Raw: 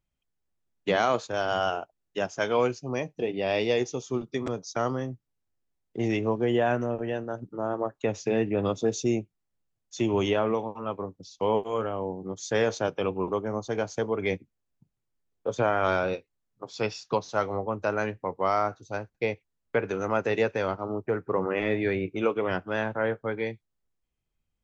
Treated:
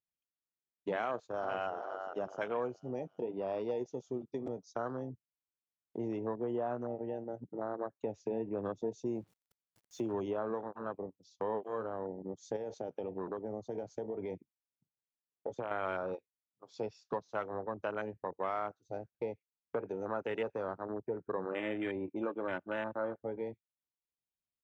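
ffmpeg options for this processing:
-filter_complex "[0:a]asplit=2[a][b];[b]afade=t=in:st=1.02:d=0.01,afade=t=out:st=1.73:d=0.01,aecho=0:1:400|800|1200|1600|2000|2400:0.334965|0.167483|0.0837414|0.0418707|0.0209353|0.0104677[c];[a][c]amix=inputs=2:normalize=0,asettb=1/sr,asplit=3[d][e][f];[d]atrim=end=9.154[g];[e]atrim=start=9.15:end=10.13,asetpts=PTS-STARTPTS,afade=t=in:d=0.004:c=qsin,afade=t=out:st=0.976:d=0.004:c=qsin,aeval=exprs='val(0)+0.5*0.0075*sgn(val(0))':c=same[h];[f]atrim=start=10.126[i];[g][h]acrossfade=d=0.004:c1=hsin:c2=qsin[j];[j][i]acrossfade=d=0.004:c1=qsin:c2=hsin,asettb=1/sr,asplit=3[k][l][m];[k]atrim=end=12.564[n];[l]atrim=start=12.56:end=15.71,asetpts=PTS-STARTPTS,afade=t=in:d=0.004:c=qsin,afade=t=out:st=3.146:d=0.004:c=qsin,acompressor=threshold=-26dB:ratio=6:attack=3.2:release=140:knee=1:detection=peak[o];[m]atrim=start=15.706[p];[n][o]acrossfade=d=0.004:c1=hsin:c2=qsin[q];[q][p]acrossfade=d=0.004:c1=qsin:c2=hsin,asettb=1/sr,asplit=3[r][s][t];[r]atrim=end=21.524[u];[s]atrim=start=21.52:end=23.21,asetpts=PTS-STARTPTS,afade=t=in:d=0.004:c=qsin,afade=t=out:st=1.686:d=0.004:c=qsin,aecho=1:1:3.4:0.51,atrim=end_sample=74529[v];[t]atrim=start=23.206[w];[u][v]acrossfade=d=0.004:c1=hsin:c2=qsin[x];[x][w]acrossfade=d=0.004:c1=qsin:c2=hsin,afwtdn=0.0316,highpass=f=200:p=1,acompressor=threshold=-42dB:ratio=2,volume=1dB"

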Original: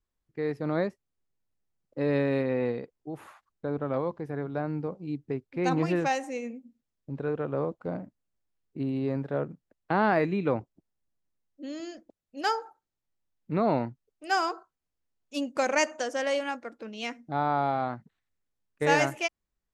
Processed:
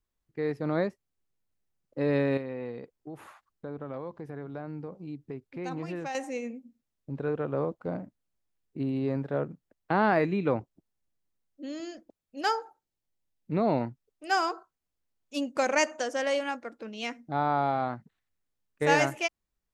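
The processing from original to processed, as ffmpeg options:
-filter_complex "[0:a]asettb=1/sr,asplit=3[a][b][c];[a]atrim=end=2.374[d];[b]atrim=start=2.37:end=6.15,asetpts=PTS-STARTPTS,afade=t=in:d=0.004:c=qsin,afade=t=out:st=3.776:d=0.004:c=qsin,acompressor=threshold=-39dB:ratio=2:attack=3.2:release=140:knee=1:detection=peak[e];[c]atrim=start=6.146[f];[d][e]acrossfade=d=0.004:c1=hsin:c2=qsin[g];[g][f]acrossfade=d=0.004:c1=qsin:c2=hsin,asettb=1/sr,asplit=3[h][i][j];[h]atrim=end=12.624[k];[i]atrim=start=12.62:end=13.81,asetpts=PTS-STARTPTS,afade=t=in:d=0.004:c=qsin,afade=t=out:st=1.186:d=0.004:c=qsin,equalizer=f=1.3k:w=1.6:g=-5.5[l];[j]atrim=start=13.806[m];[k][l]acrossfade=d=0.004:c1=hsin:c2=qsin[n];[n][m]acrossfade=d=0.004:c1=qsin:c2=hsin"

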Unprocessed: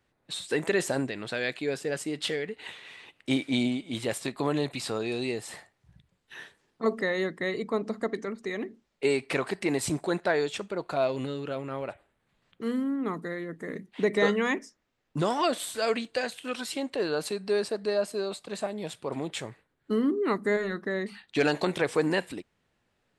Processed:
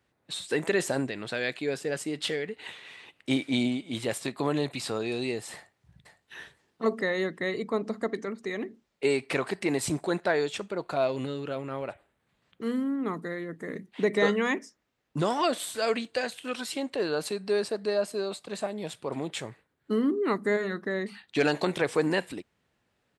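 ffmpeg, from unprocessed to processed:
-filter_complex "[0:a]asplit=2[a][b];[b]afade=t=in:st=5.54:d=0.01,afade=t=out:st=6.37:d=0.01,aecho=0:1:510|1020:0.398107|0.0398107[c];[a][c]amix=inputs=2:normalize=0,highpass=45"

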